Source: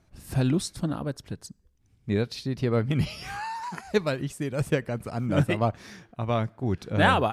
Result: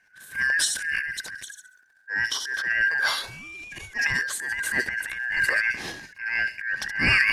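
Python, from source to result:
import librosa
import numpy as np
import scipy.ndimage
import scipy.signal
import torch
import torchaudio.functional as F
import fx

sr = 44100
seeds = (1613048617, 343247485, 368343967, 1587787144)

y = fx.band_shuffle(x, sr, order='2143')
y = fx.echo_wet_highpass(y, sr, ms=68, feedback_pct=31, hz=5400.0, wet_db=-4)
y = fx.transient(y, sr, attack_db=-9, sustain_db=12)
y = fx.band_widen(y, sr, depth_pct=70, at=(3.01, 4.14))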